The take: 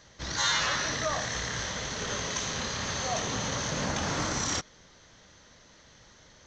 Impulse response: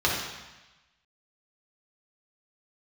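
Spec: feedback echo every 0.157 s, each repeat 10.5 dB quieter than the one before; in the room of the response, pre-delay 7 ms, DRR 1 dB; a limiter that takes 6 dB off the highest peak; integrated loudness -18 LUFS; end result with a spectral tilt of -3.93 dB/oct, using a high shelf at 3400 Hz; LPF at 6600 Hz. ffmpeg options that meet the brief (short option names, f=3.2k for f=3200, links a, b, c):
-filter_complex "[0:a]lowpass=6.6k,highshelf=f=3.4k:g=-9,alimiter=level_in=0.5dB:limit=-24dB:level=0:latency=1,volume=-0.5dB,aecho=1:1:157|314|471:0.299|0.0896|0.0269,asplit=2[a][b];[1:a]atrim=start_sample=2205,adelay=7[c];[b][c]afir=irnorm=-1:irlink=0,volume=-15.5dB[d];[a][d]amix=inputs=2:normalize=0,volume=13.5dB"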